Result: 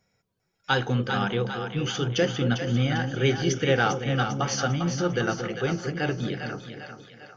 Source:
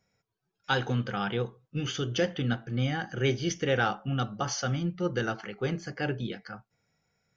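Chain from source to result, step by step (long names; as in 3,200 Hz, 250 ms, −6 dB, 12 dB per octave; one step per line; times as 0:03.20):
echo with a time of its own for lows and highs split 540 Hz, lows 228 ms, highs 399 ms, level −6.5 dB
level +3.5 dB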